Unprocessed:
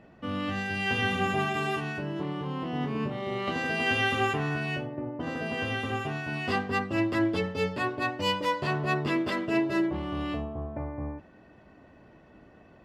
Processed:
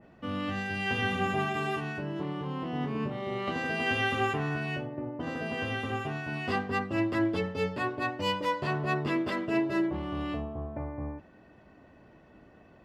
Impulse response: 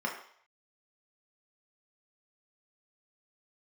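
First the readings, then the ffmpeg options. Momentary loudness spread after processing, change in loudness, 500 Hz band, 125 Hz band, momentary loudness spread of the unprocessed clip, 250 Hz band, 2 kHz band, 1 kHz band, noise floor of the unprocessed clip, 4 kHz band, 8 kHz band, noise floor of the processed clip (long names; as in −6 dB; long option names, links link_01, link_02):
8 LU, −2.0 dB, −1.5 dB, −1.5 dB, 8 LU, −1.5 dB, −2.5 dB, −1.5 dB, −55 dBFS, −3.5 dB, −4.0 dB, −57 dBFS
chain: -af "adynamicequalizer=threshold=0.00708:dfrequency=2400:dqfactor=0.7:tfrequency=2400:tqfactor=0.7:attack=5:release=100:ratio=0.375:range=1.5:mode=cutabove:tftype=highshelf,volume=-1.5dB"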